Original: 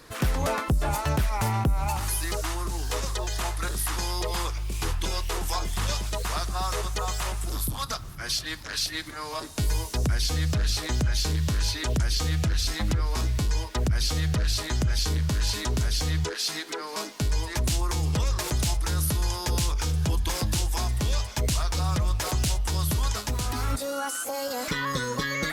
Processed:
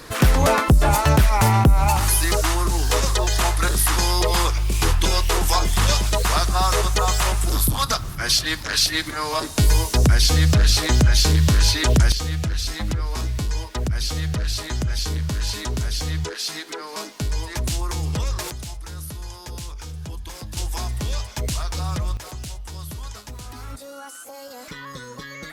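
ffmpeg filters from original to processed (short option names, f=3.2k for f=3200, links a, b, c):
-af "asetnsamples=n=441:p=0,asendcmd='12.12 volume volume 1dB;18.51 volume volume -8dB;20.57 volume volume 0dB;22.17 volume volume -8dB',volume=9.5dB"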